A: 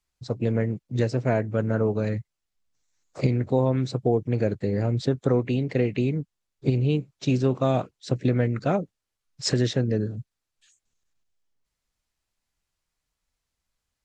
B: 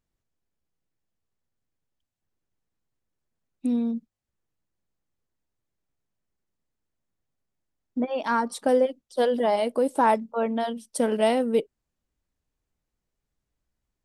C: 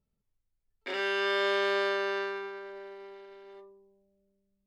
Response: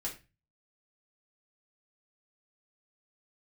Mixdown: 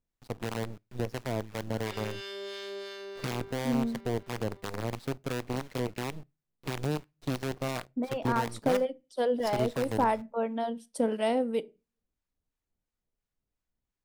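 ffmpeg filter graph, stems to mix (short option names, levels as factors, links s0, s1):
-filter_complex "[0:a]lowpass=6400,acrusher=bits=4:dc=4:mix=0:aa=0.000001,volume=0.355,asplit=2[s0][s1];[s1]volume=0.0708[s2];[1:a]volume=0.596,asplit=2[s3][s4];[s4]volume=0.211[s5];[2:a]aemphasis=mode=production:type=50kf,acrossover=split=460|3000[s6][s7][s8];[s7]acompressor=threshold=0.00501:ratio=3[s9];[s6][s9][s8]amix=inputs=3:normalize=0,adelay=1000,volume=0.562[s10];[3:a]atrim=start_sample=2205[s11];[s2][s5]amix=inputs=2:normalize=0[s12];[s12][s11]afir=irnorm=-1:irlink=0[s13];[s0][s3][s10][s13]amix=inputs=4:normalize=0,acrossover=split=860[s14][s15];[s14]aeval=exprs='val(0)*(1-0.5/2+0.5/2*cos(2*PI*2.9*n/s))':c=same[s16];[s15]aeval=exprs='val(0)*(1-0.5/2-0.5/2*cos(2*PI*2.9*n/s))':c=same[s17];[s16][s17]amix=inputs=2:normalize=0,highshelf=f=5200:g=-4"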